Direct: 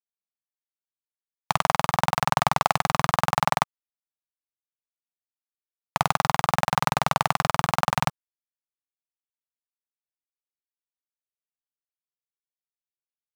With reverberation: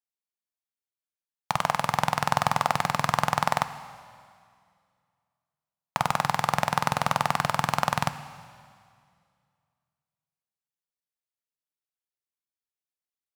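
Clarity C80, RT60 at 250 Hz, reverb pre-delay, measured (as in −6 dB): 13.5 dB, 2.3 s, 13 ms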